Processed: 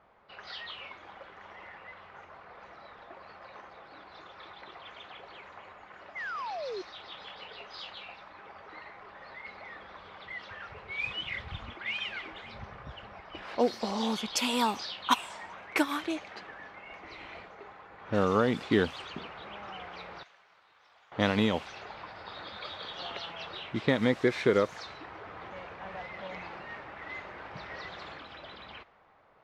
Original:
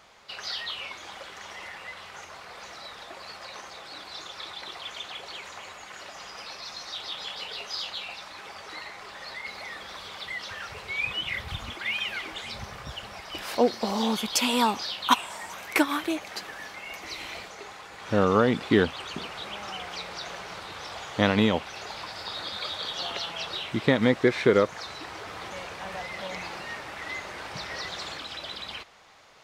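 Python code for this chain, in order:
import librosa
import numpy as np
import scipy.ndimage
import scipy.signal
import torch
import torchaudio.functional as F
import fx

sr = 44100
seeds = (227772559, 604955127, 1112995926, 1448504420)

y = fx.spec_paint(x, sr, seeds[0], shape='fall', start_s=6.15, length_s=0.67, low_hz=350.0, high_hz=2200.0, level_db=-32.0)
y = fx.pre_emphasis(y, sr, coefficient=0.97, at=(20.23, 21.12))
y = fx.env_lowpass(y, sr, base_hz=1300.0, full_db=-20.5)
y = F.gain(torch.from_numpy(y), -4.5).numpy()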